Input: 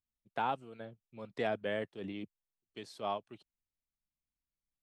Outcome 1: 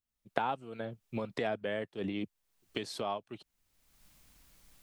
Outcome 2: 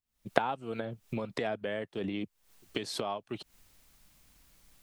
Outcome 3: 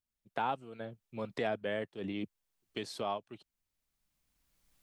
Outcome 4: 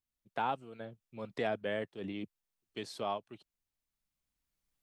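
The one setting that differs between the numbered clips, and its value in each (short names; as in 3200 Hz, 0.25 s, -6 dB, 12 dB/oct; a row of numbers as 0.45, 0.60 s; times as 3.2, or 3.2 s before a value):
recorder AGC, rising by: 34, 88, 13, 5.3 dB/s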